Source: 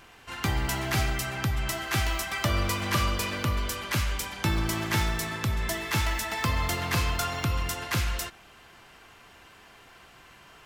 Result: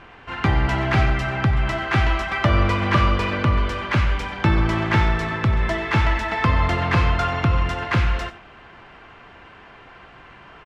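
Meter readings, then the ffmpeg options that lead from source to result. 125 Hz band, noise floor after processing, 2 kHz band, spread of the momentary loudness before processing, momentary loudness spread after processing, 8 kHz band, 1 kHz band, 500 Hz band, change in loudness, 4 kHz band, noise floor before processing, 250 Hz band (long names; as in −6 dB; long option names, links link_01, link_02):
+9.5 dB, −46 dBFS, +7.0 dB, 4 LU, 4 LU, −11.0 dB, +9.0 dB, +9.0 dB, +7.5 dB, +1.0 dB, −53 dBFS, +9.0 dB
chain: -filter_complex "[0:a]lowpass=2300,asplit=2[link_01][link_02];[link_02]aecho=0:1:93:0.158[link_03];[link_01][link_03]amix=inputs=2:normalize=0,volume=9dB"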